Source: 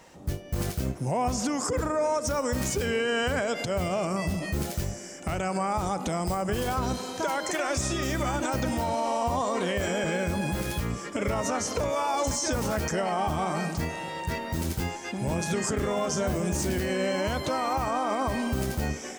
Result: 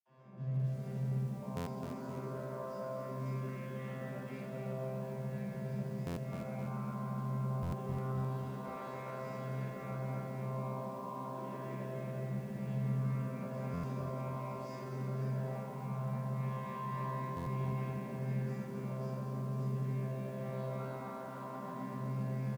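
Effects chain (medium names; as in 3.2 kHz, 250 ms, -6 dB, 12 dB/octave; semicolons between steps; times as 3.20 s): vocoder on a broken chord bare fifth, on C3, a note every 116 ms; hum notches 50/100/150/200/250/300/350/400 Hz; tempo 0.85×; in parallel at -11 dB: hard clipper -27 dBFS, distortion -14 dB; on the sum: band-pass 130–4400 Hz; peak limiter -28 dBFS, peak gain reduction 11.5 dB; gain riding 0.5 s; reverse bouncing-ball echo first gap 40 ms, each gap 1.15×, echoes 5; reverberation RT60 2.9 s, pre-delay 47 ms; buffer glitch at 1.56/6.06/7.62/13.73/17.36 s, samples 512, times 8; bit-crushed delay 261 ms, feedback 55%, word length 10-bit, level -7 dB; trim +2.5 dB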